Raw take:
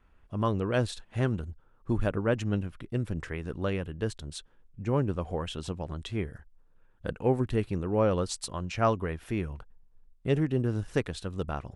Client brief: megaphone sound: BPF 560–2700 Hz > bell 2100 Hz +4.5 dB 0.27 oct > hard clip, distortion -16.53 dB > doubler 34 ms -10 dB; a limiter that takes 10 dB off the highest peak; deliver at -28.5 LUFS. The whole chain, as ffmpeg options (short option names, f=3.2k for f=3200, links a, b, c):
-filter_complex "[0:a]alimiter=limit=-21.5dB:level=0:latency=1,highpass=560,lowpass=2.7k,equalizer=f=2.1k:t=o:w=0.27:g=4.5,asoftclip=type=hard:threshold=-28.5dB,asplit=2[a][b];[b]adelay=34,volume=-10dB[c];[a][c]amix=inputs=2:normalize=0,volume=13dB"